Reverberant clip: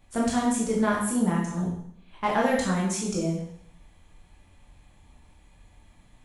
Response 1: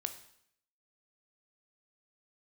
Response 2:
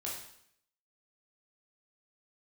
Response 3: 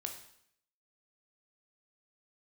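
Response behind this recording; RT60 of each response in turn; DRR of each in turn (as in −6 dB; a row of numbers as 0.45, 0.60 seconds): 2; 0.70, 0.70, 0.70 seconds; 7.5, −4.5, 3.5 decibels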